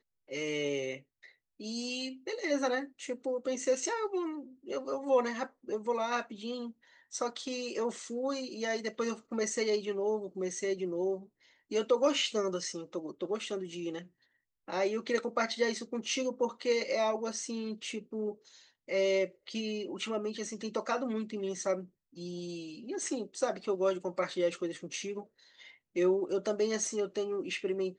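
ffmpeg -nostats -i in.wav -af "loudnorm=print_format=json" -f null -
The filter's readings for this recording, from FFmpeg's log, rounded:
"input_i" : "-33.9",
"input_tp" : "-16.0",
"input_lra" : "2.6",
"input_thresh" : "-44.3",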